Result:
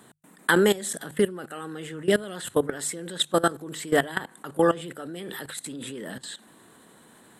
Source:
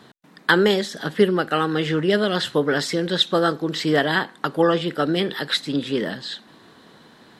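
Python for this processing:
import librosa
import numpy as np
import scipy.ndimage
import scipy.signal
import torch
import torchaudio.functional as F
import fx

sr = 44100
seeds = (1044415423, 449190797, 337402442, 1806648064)

y = fx.level_steps(x, sr, step_db=18)
y = fx.high_shelf_res(y, sr, hz=6600.0, db=10.0, q=3.0)
y = fx.hum_notches(y, sr, base_hz=50, count=3)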